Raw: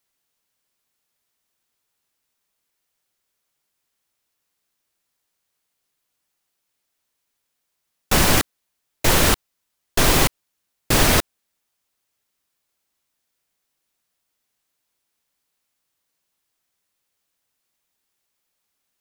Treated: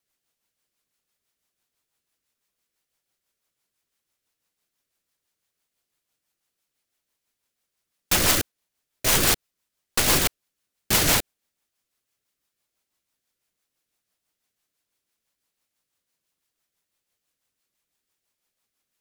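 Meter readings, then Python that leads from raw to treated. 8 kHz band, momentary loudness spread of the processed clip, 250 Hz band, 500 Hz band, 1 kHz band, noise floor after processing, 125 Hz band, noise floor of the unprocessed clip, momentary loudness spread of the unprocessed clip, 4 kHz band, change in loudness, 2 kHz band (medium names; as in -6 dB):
-0.5 dB, 8 LU, -7.0 dB, -6.5 dB, -6.0 dB, -83 dBFS, -7.5 dB, -77 dBFS, 8 LU, -2.0 dB, -2.5 dB, -4.0 dB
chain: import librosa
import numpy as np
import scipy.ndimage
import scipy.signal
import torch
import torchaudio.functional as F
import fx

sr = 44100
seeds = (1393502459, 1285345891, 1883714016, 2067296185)

y = (np.mod(10.0 ** (11.0 / 20.0) * x + 1.0, 2.0) - 1.0) / 10.0 ** (11.0 / 20.0)
y = fx.rotary(y, sr, hz=6.0)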